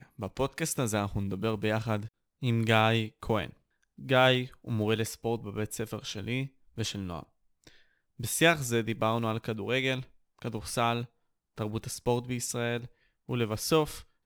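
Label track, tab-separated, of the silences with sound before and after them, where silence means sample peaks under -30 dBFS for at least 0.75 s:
7.200000	8.200000	silence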